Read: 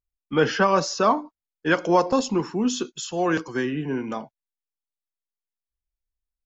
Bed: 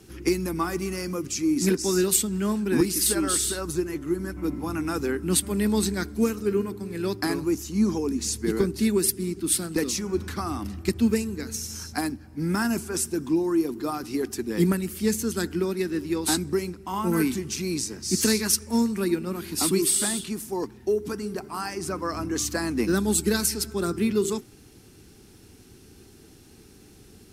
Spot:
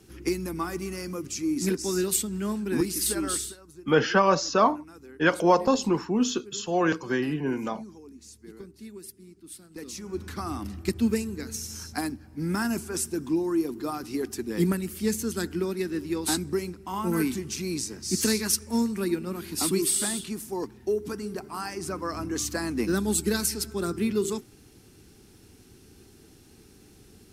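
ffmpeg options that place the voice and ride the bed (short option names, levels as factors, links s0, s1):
-filter_complex "[0:a]adelay=3550,volume=0.891[s0];[1:a]volume=5.01,afade=t=out:st=3.33:d=0.24:silence=0.149624,afade=t=in:st=9.69:d=0.82:silence=0.125893[s1];[s0][s1]amix=inputs=2:normalize=0"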